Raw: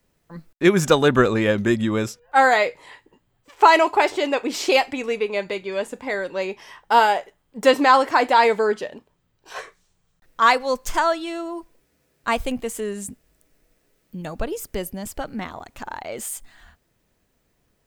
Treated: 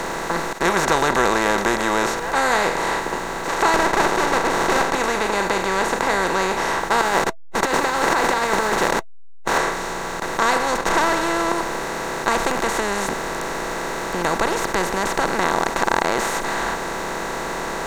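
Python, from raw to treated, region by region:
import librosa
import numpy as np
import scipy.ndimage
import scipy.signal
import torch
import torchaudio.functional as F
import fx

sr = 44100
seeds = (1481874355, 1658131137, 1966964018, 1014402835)

y = fx.chain(x, sr, fx.bandpass_edges(low_hz=250.0, high_hz=4100.0),
    fx.air_absorb(metres=79.0),
    fx.running_max(window=17), at=(3.74, 4.95))
y = fx.chain(y, sr, fx.delta_hold(step_db=-38.0),
    fx.notch(hz=660.0, q=12.0),
    fx.over_compress(threshold_db=-25.0, ratio=-1.0), at=(7.01, 9.58))
y = fx.chain(y, sr, fx.lowpass(hz=1800.0, slope=6),
    fx.leveller(passes=2), at=(10.78, 11.52))
y = fx.bin_compress(y, sr, power=0.2)
y = fx.graphic_eq_15(y, sr, hz=(100, 1600, 6300), db=(-6, 3, 9))
y = y * librosa.db_to_amplitude(-11.5)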